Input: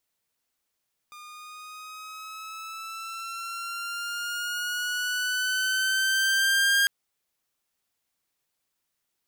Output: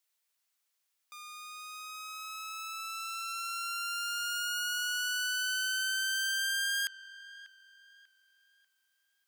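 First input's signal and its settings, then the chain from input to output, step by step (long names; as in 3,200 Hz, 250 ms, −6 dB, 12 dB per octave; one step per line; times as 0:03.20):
pitch glide with a swell saw, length 5.75 s, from 1,210 Hz, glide +5 semitones, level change +24 dB, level −16 dB
high-pass filter 1,400 Hz 6 dB per octave
downward compressor 6 to 1, threshold −28 dBFS
delay with a low-pass on its return 592 ms, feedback 33%, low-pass 3,900 Hz, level −17 dB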